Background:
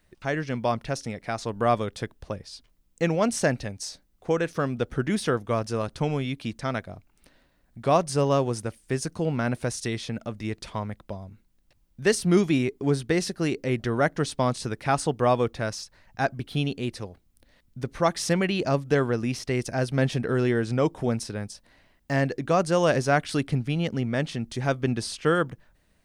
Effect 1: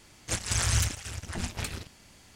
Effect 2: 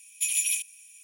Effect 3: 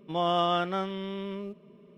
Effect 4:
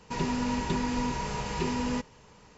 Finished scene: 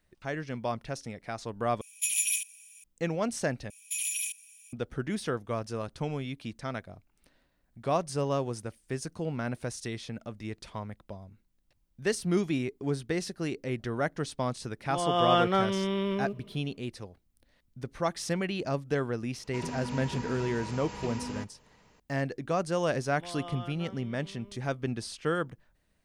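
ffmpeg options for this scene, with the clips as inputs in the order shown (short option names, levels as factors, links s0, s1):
-filter_complex "[2:a]asplit=2[s0][s1];[3:a]asplit=2[s2][s3];[0:a]volume=0.447[s4];[s1]alimiter=limit=0.112:level=0:latency=1:release=23[s5];[s2]dynaudnorm=f=100:g=9:m=3.76[s6];[4:a]highpass=58[s7];[s4]asplit=3[s8][s9][s10];[s8]atrim=end=1.814[s11];[s0]atrim=end=1.03,asetpts=PTS-STARTPTS,volume=0.794[s12];[s9]atrim=start=2.836:end=3.704[s13];[s5]atrim=end=1.03,asetpts=PTS-STARTPTS,volume=0.668[s14];[s10]atrim=start=4.726[s15];[s6]atrim=end=1.97,asetpts=PTS-STARTPTS,volume=0.531,afade=t=in:d=0.004:c=hsin,afade=t=out:st=1.966:d=0.004:c=hsin,adelay=14800[s16];[s7]atrim=end=2.57,asetpts=PTS-STARTPTS,volume=0.422,afade=t=in:d=0.004:c=hsin,afade=t=out:st=2.566:d=0.004:c=hsin,adelay=19430[s17];[s3]atrim=end=1.97,asetpts=PTS-STARTPTS,volume=0.15,afade=t=in:d=0.004:c=hsin,afade=t=out:st=1.966:d=0.004:c=hsin,adelay=1017828S[s18];[s11][s12]acrossfade=d=0.004:c1=hsin:c2=hsin[s19];[s19][s13]acrossfade=d=0.004:c1=hsin:c2=hsin[s20];[s20][s14]acrossfade=d=0.004:c1=hsin:c2=hsin[s21];[s21][s15]acrossfade=d=0.004:c1=hsin:c2=hsin[s22];[s22][s16][s17][s18]amix=inputs=4:normalize=0"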